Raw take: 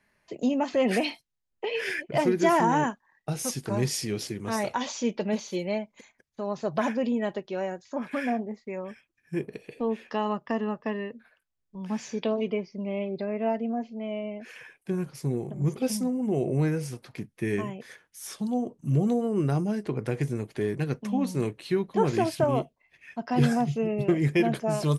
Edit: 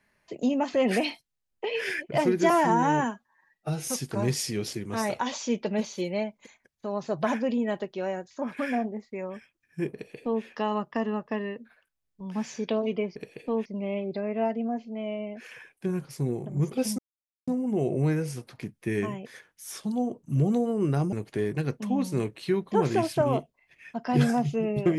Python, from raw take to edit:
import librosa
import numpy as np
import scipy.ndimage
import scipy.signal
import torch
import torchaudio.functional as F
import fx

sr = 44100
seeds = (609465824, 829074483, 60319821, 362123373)

y = fx.edit(x, sr, fx.stretch_span(start_s=2.5, length_s=0.91, factor=1.5),
    fx.duplicate(start_s=9.48, length_s=0.5, to_s=12.7),
    fx.insert_silence(at_s=16.03, length_s=0.49),
    fx.cut(start_s=19.68, length_s=0.67), tone=tone)